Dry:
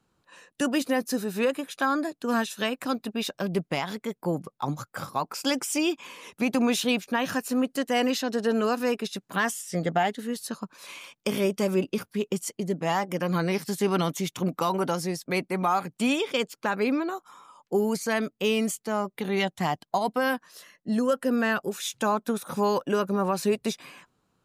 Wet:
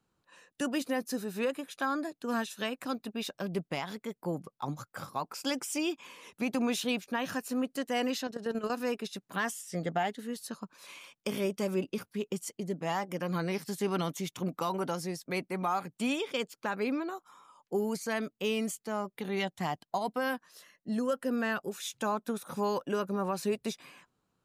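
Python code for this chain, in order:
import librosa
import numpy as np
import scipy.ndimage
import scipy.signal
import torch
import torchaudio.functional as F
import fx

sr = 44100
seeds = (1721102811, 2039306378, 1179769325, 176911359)

y = fx.level_steps(x, sr, step_db=12, at=(8.27, 8.7))
y = y * librosa.db_to_amplitude(-6.5)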